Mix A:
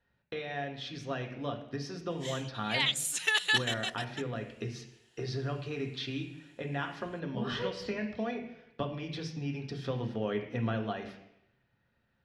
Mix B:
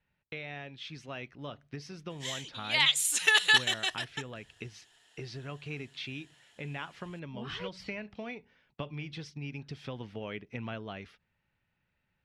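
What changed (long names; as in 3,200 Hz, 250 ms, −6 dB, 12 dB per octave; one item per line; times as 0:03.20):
background +4.5 dB
reverb: off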